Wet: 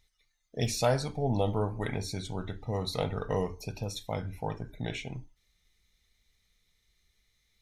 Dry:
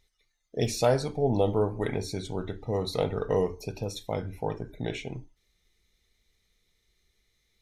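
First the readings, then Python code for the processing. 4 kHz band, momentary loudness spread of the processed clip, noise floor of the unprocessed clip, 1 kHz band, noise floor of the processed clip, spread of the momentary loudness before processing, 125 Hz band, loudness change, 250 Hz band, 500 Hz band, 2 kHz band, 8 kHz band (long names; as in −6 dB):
0.0 dB, 10 LU, −74 dBFS, −1.5 dB, −75 dBFS, 11 LU, −0.5 dB, −3.0 dB, −3.0 dB, −5.5 dB, 0.0 dB, 0.0 dB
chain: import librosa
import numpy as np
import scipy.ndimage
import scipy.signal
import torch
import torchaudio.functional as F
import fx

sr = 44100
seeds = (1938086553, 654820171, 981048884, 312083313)

y = fx.peak_eq(x, sr, hz=390.0, db=-7.5, octaves=1.1)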